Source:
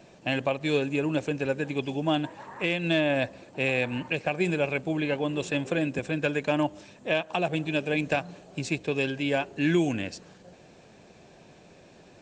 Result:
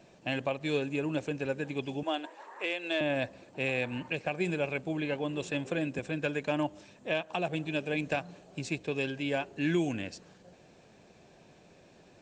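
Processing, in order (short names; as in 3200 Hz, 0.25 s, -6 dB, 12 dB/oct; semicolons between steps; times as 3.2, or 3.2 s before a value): 2.03–3.01 HPF 350 Hz 24 dB/oct; gain -5 dB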